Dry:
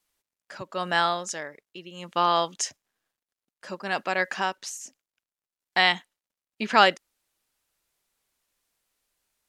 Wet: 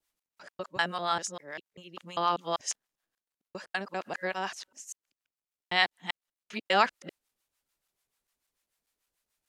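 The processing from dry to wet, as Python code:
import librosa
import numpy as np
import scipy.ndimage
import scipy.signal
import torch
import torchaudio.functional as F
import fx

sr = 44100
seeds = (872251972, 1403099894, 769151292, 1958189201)

y = fx.local_reverse(x, sr, ms=197.0)
y = fx.harmonic_tremolo(y, sr, hz=6.8, depth_pct=70, crossover_hz=680.0)
y = F.gain(torch.from_numpy(y), -2.0).numpy()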